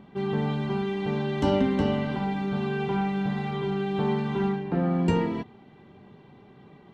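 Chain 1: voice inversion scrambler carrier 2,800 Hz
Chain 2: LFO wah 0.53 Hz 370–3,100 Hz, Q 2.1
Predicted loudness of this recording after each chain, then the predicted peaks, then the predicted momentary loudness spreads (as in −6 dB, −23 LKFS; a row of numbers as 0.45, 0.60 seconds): −23.5, −36.0 LKFS; −10.0, −16.5 dBFS; 5, 14 LU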